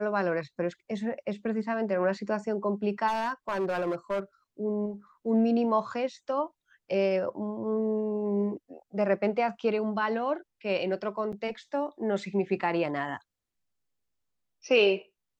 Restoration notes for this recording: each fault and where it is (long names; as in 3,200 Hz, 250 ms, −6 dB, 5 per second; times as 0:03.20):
0:03.07–0:04.20: clipping −25 dBFS
0:11.32–0:11.33: drop-out 7.2 ms